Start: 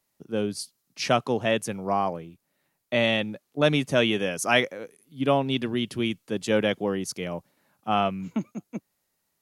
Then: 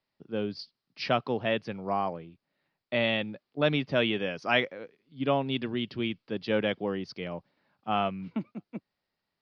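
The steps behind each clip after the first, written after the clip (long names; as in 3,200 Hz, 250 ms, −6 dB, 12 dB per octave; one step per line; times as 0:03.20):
elliptic low-pass filter 4,900 Hz, stop band 40 dB
level −3.5 dB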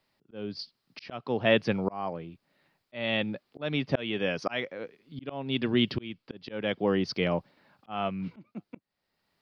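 volume swells 610 ms
level +9 dB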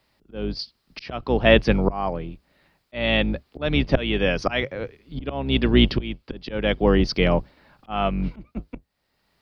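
sub-octave generator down 2 octaves, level −1 dB
level +7.5 dB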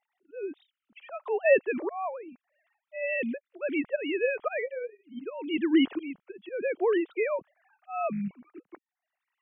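three sine waves on the formant tracks
level −7.5 dB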